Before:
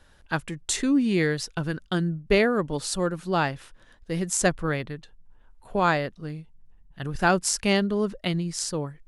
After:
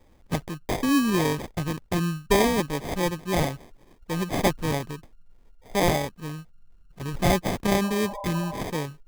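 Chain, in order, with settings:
sample-rate reduction 1,400 Hz, jitter 0%
healed spectral selection 0:07.86–0:08.59, 500–1,100 Hz before

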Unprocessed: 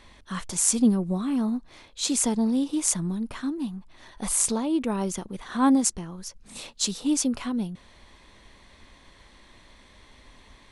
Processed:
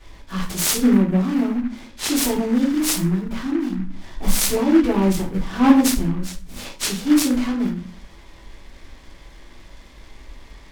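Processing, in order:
0:03.77–0:06.57: low-shelf EQ 210 Hz +7.5 dB
convolution reverb RT60 0.40 s, pre-delay 3 ms, DRR −10.5 dB
short delay modulated by noise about 1,400 Hz, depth 0.045 ms
level −7 dB

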